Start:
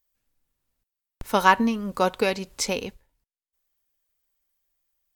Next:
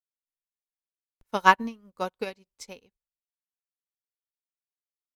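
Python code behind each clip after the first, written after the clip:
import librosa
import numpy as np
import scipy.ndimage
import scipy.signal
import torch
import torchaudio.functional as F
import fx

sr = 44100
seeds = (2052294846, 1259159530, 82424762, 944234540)

y = fx.upward_expand(x, sr, threshold_db=-39.0, expansion=2.5)
y = y * librosa.db_to_amplitude(1.5)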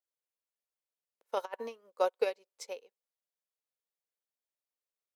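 y = fx.over_compress(x, sr, threshold_db=-27.0, ratio=-0.5)
y = fx.ladder_highpass(y, sr, hz=430.0, resonance_pct=55)
y = y * librosa.db_to_amplitude(2.5)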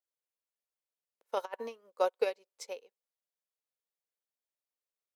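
y = x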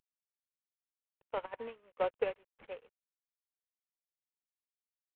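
y = fx.cvsd(x, sr, bps=16000)
y = y * librosa.db_to_amplitude(-2.5)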